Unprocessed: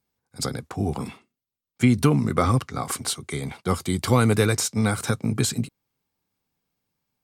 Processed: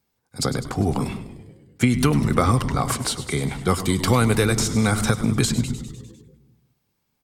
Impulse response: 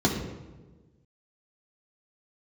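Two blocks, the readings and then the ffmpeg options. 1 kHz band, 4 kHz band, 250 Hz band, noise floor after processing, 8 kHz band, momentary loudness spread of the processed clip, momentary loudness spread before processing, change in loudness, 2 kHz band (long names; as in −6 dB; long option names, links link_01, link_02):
+3.0 dB, +3.5 dB, +2.0 dB, −74 dBFS, +2.0 dB, 10 LU, 11 LU, +2.0 dB, +3.0 dB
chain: -filter_complex "[0:a]asplit=8[link_01][link_02][link_03][link_04][link_05][link_06][link_07][link_08];[link_02]adelay=100,afreqshift=-90,volume=-15dB[link_09];[link_03]adelay=200,afreqshift=-180,volume=-19.2dB[link_10];[link_04]adelay=300,afreqshift=-270,volume=-23.3dB[link_11];[link_05]adelay=400,afreqshift=-360,volume=-27.5dB[link_12];[link_06]adelay=500,afreqshift=-450,volume=-31.6dB[link_13];[link_07]adelay=600,afreqshift=-540,volume=-35.8dB[link_14];[link_08]adelay=700,afreqshift=-630,volume=-39.9dB[link_15];[link_01][link_09][link_10][link_11][link_12][link_13][link_14][link_15]amix=inputs=8:normalize=0,asplit=2[link_16][link_17];[1:a]atrim=start_sample=2205,adelay=110[link_18];[link_17][link_18]afir=irnorm=-1:irlink=0,volume=-35dB[link_19];[link_16][link_19]amix=inputs=2:normalize=0,acrossover=split=1200|6900[link_20][link_21][link_22];[link_20]acompressor=threshold=-21dB:ratio=4[link_23];[link_21]acompressor=threshold=-30dB:ratio=4[link_24];[link_22]acompressor=threshold=-37dB:ratio=4[link_25];[link_23][link_24][link_25]amix=inputs=3:normalize=0,volume=5.5dB"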